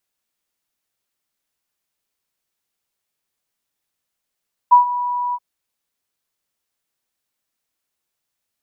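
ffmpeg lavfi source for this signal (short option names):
-f lavfi -i "aevalsrc='0.631*sin(2*PI*978*t)':d=0.677:s=44100,afade=t=in:d=0.018,afade=t=out:st=0.018:d=0.119:silence=0.178,afade=t=out:st=0.63:d=0.047"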